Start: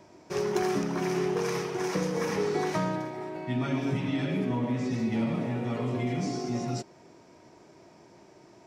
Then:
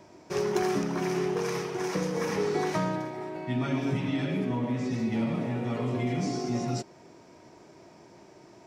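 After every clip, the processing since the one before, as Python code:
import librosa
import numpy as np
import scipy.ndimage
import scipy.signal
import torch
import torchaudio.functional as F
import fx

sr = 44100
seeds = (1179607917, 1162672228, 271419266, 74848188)

y = fx.rider(x, sr, range_db=3, speed_s=2.0)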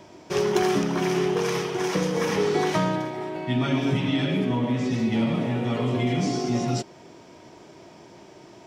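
y = fx.peak_eq(x, sr, hz=3200.0, db=7.0, octaves=0.41)
y = F.gain(torch.from_numpy(y), 5.0).numpy()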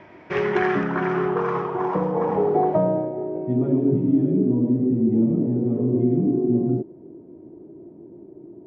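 y = fx.filter_sweep_lowpass(x, sr, from_hz=2000.0, to_hz=340.0, start_s=0.43, end_s=4.13, q=2.8)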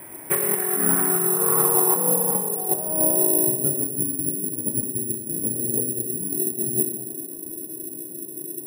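y = fx.over_compress(x, sr, threshold_db=-25.0, ratio=-0.5)
y = fx.rev_gated(y, sr, seeds[0], gate_ms=450, shape='falling', drr_db=3.0)
y = (np.kron(scipy.signal.resample_poly(y, 1, 4), np.eye(4)[0]) * 4)[:len(y)]
y = F.gain(torch.from_numpy(y), -5.0).numpy()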